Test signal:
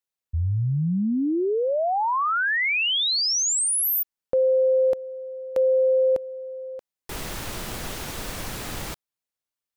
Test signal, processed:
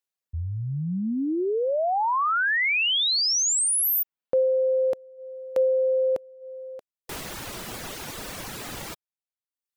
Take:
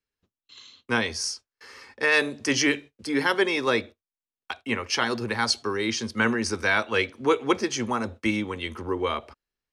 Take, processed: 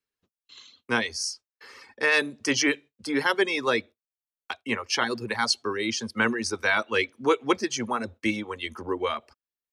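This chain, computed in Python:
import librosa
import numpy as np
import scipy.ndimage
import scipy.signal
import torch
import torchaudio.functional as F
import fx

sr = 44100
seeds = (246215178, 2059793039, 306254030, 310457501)

y = fx.dereverb_blind(x, sr, rt60_s=0.75)
y = fx.low_shelf(y, sr, hz=80.0, db=-11.0)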